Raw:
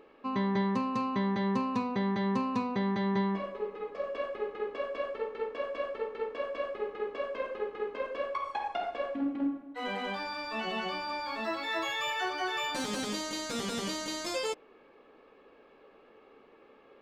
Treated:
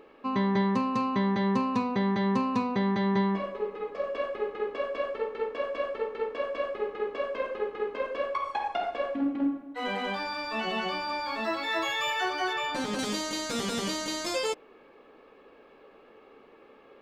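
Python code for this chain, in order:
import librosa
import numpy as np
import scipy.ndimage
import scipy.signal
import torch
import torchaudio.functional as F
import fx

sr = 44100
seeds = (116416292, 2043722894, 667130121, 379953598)

y = fx.high_shelf(x, sr, hz=4500.0, db=-10.0, at=(12.53, 12.99))
y = F.gain(torch.from_numpy(y), 3.5).numpy()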